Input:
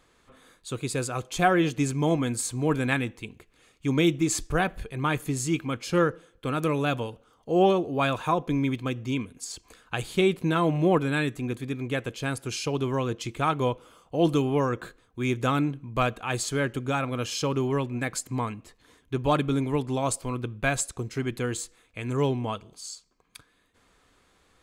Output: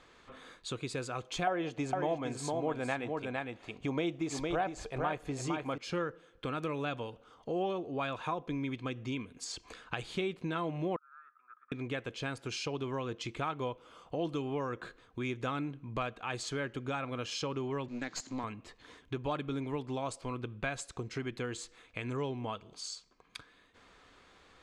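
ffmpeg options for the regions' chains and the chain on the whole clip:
-filter_complex "[0:a]asettb=1/sr,asplit=3[a][b][c];[a]atrim=end=1.474[d];[b]atrim=start=1.47:end=5.78,asetpts=PTS-STARTPTS,afade=t=in:d=0.004:c=qsin,afade=t=out:st=4.306:d=0.004:c=qsin,equalizer=f=690:w=1.2:g=12,aecho=1:1:459:0.473,atrim=end_sample=190071[e];[c]atrim=start=5.776[f];[d][e]acrossfade=d=0.004:c1=hsin:c2=qsin[g];[g][f]acrossfade=d=0.004:c1=qsin:c2=hsin,asettb=1/sr,asplit=3[h][i][j];[h]atrim=end=10.964[k];[i]atrim=start=10.96:end=11.72,asetpts=PTS-STARTPTS,afade=t=in:d=0.004:c=qsin,afade=t=out:st=0.756:d=0.004:c=qsin,agate=range=-33dB:threshold=-42dB:ratio=3:release=100:detection=peak,asuperpass=centerf=1300:order=4:qfactor=7,acompressor=threshold=-50dB:ratio=2.5:attack=3.2:release=140:knee=1:detection=peak[l];[j]atrim=start=11.716[m];[k][l]acrossfade=d=0.004:c1=hsin:c2=qsin[n];[n][m]acrossfade=d=0.004:c1=qsin:c2=hsin,asettb=1/sr,asplit=3[o][p][q];[o]atrim=end=17.884[r];[p]atrim=start=17.88:end=18.44,asetpts=PTS-STARTPTS,afade=t=in:d=0.004:c=qsin,afade=t=out:st=0.556:d=0.004:c=qsin,aeval=exprs='val(0)+0.5*0.00631*sgn(val(0))':c=same,highpass=200,equalizer=f=260:t=q:w=4:g=6,equalizer=f=490:t=q:w=4:g=-8,equalizer=f=1.2k:t=q:w=4:g=-3,equalizer=f=2.4k:t=q:w=4:g=-4,equalizer=f=4.3k:t=q:w=4:g=7,equalizer=f=6.8k:t=q:w=4:g=9,lowpass=f=7.6k:w=0.5412,lowpass=f=7.6k:w=1.3066,aeval=exprs='(tanh(10*val(0)+0.65)-tanh(0.65))/10':c=same[s];[q]atrim=start=18.436[t];[r][s]acrossfade=d=0.004:c1=hsin:c2=qsin[u];[u][t]acrossfade=d=0.004:c1=qsin:c2=hsin,lowpass=5.2k,lowshelf=f=280:g=-5.5,acompressor=threshold=-44dB:ratio=2.5,volume=4.5dB"

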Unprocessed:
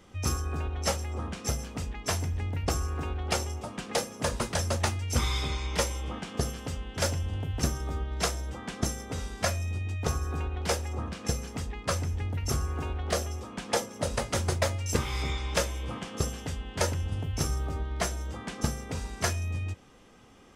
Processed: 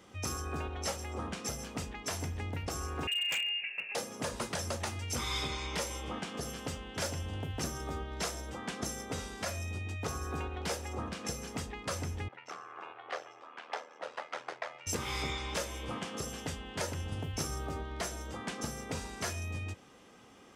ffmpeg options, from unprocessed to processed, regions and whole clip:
-filter_complex "[0:a]asettb=1/sr,asplit=3[a][b][c];[a]atrim=end=3.074[d];[b]atrim=start=3.07:end=3.95,asetpts=PTS-STARTPTS,afade=t=in:d=0.004:c=qsin,afade=t=out:st=0.876:d=0.004:c=qsin,equalizer=f=1.6k:w=1.6:g=-12.5,lowpass=f=2.5k:t=q:w=0.5098,lowpass=f=2.5k:t=q:w=0.6013,lowpass=f=2.5k:t=q:w=0.9,lowpass=f=2.5k:t=q:w=2.563,afreqshift=-2900,aeval=exprs='0.0422*(abs(mod(val(0)/0.0422+3,4)-2)-1)':c=same[e];[c]atrim=start=3.946[f];[d][e]acrossfade=d=0.004:c1=hsin:c2=qsin[g];[g][f]acrossfade=d=0.004:c1=qsin:c2=hsin,asettb=1/sr,asplit=3[h][i][j];[h]atrim=end=12.284[k];[i]atrim=start=12.28:end=14.87,asetpts=PTS-STARTPTS,afade=t=in:d=0.004:c=qsin,afade=t=out:st=2.586:d=0.004:c=qsin,aeval=exprs='val(0)*sin(2*PI*40*n/s)':c=same,highpass=730,lowpass=2.4k[l];[j]atrim=start=14.866[m];[k][l]acrossfade=d=0.004:c1=hsin:c2=qsin[n];[n][m]acrossfade=d=0.004:c1=qsin:c2=hsin,highpass=f=180:p=1,alimiter=limit=-24dB:level=0:latency=1:release=143"

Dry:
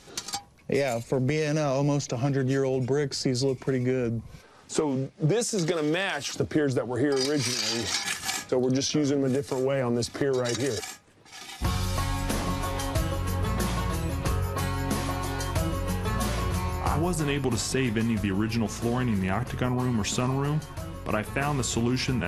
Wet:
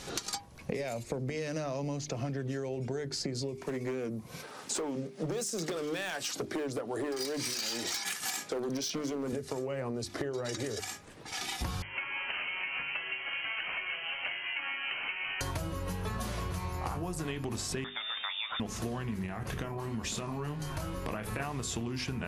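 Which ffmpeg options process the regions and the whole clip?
-filter_complex "[0:a]asettb=1/sr,asplit=3[a][b][c];[a]atrim=end=3.554[d];[b]atrim=start=3.55:end=9.33,asetpts=PTS-STARTPTS,afade=t=in:d=0.004:c=qsin,afade=t=out:st=5.776:d=0.004:c=qsin,highpass=180,asoftclip=type=hard:threshold=-23dB,highshelf=f=11k:g=10[e];[c]atrim=start=9.326[f];[d][e]acrossfade=d=0.004:c1=hsin:c2=qsin[g];[g][f]acrossfade=d=0.004:c1=qsin:c2=hsin,asettb=1/sr,asplit=3[h][i][j];[h]atrim=end=11.824[k];[i]atrim=start=11.82:end=15.41,asetpts=PTS-STARTPTS,afade=t=in:d=0.004:c=qsin,afade=t=out:st=3.586:d=0.004:c=qsin,highpass=480,tremolo=f=5.2:d=0.29,lowpass=f=2.8k:t=q:w=0.5098,lowpass=f=2.8k:t=q:w=0.6013,lowpass=f=2.8k:t=q:w=0.9,lowpass=f=2.8k:t=q:w=2.563,afreqshift=-3300[l];[j]atrim=start=15.406[m];[k][l]acrossfade=d=0.004:c1=hsin:c2=qsin[n];[n][m]acrossfade=d=0.004:c1=qsin:c2=hsin,asettb=1/sr,asplit=3[o][p][q];[o]atrim=end=17.844[r];[p]atrim=start=17.84:end=18.6,asetpts=PTS-STARTPTS,afade=t=in:d=0.004:c=qsin,afade=t=out:st=0.756:d=0.004:c=qsin,highpass=f=880:p=1,lowpass=f=3.2k:t=q:w=0.5098,lowpass=f=3.2k:t=q:w=0.6013,lowpass=f=3.2k:t=q:w=0.9,lowpass=f=3.2k:t=q:w=2.563,afreqshift=-3800[s];[q]atrim=start=18.596[t];[r][s]acrossfade=d=0.004:c1=hsin:c2=qsin[u];[u][t]acrossfade=d=0.004:c1=qsin:c2=hsin,asettb=1/sr,asplit=3[v][w][x];[v]atrim=end=19.264[y];[w]atrim=start=19.26:end=21.4,asetpts=PTS-STARTPTS,afade=t=in:d=0.004:c=qsin,afade=t=out:st=2.136:d=0.004:c=qsin,acompressor=threshold=-30dB:ratio=2.5:attack=3.2:release=140:knee=1:detection=peak,asplit=2[z][aa];[aa]adelay=27,volume=-7.5dB[ab];[z][ab]amix=inputs=2:normalize=0,atrim=end_sample=94374[ac];[x]atrim=start=21.396[ad];[y][ac]acrossfade=d=0.004:c1=hsin:c2=qsin[ae];[ae][ad]acrossfade=d=0.004:c1=qsin:c2=hsin,bandreject=f=50:t=h:w=6,bandreject=f=100:t=h:w=6,bandreject=f=150:t=h:w=6,bandreject=f=200:t=h:w=6,bandreject=f=250:t=h:w=6,bandreject=f=300:t=h:w=6,bandreject=f=350:t=h:w=6,bandreject=f=400:t=h:w=6,acompressor=threshold=-40dB:ratio=8,volume=7dB"

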